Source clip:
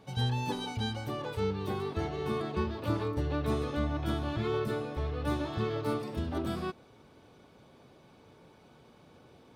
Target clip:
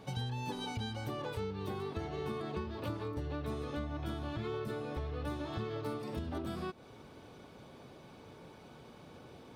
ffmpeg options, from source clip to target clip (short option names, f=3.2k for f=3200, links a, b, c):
-af "acompressor=threshold=-40dB:ratio=6,volume=4dB"